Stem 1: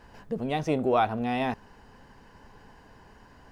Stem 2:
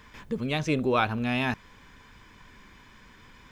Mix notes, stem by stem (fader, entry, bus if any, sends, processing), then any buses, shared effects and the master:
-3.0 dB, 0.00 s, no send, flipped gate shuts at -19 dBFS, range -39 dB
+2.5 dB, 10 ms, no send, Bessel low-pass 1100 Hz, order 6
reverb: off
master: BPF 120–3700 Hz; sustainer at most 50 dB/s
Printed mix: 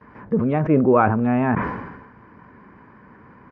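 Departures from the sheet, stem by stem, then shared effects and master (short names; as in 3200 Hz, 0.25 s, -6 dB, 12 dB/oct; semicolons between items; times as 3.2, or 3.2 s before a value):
stem 1 -3.0 dB -> -10.5 dB; stem 2 +2.5 dB -> +10.0 dB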